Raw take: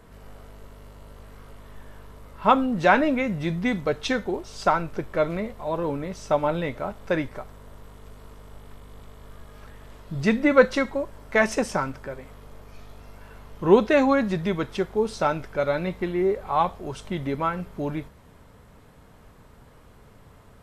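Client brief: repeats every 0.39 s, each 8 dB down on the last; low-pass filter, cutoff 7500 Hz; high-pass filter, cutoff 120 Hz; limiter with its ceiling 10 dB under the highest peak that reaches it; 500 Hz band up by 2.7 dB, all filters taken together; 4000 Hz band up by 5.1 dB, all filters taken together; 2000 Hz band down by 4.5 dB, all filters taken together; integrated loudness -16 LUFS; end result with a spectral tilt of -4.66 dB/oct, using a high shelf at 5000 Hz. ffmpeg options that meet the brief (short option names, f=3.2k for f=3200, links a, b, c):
-af "highpass=120,lowpass=7.5k,equalizer=f=500:t=o:g=3.5,equalizer=f=2k:t=o:g=-8.5,equalizer=f=4k:t=o:g=6,highshelf=f=5k:g=7,alimiter=limit=-12dB:level=0:latency=1,aecho=1:1:390|780|1170|1560|1950:0.398|0.159|0.0637|0.0255|0.0102,volume=8.5dB"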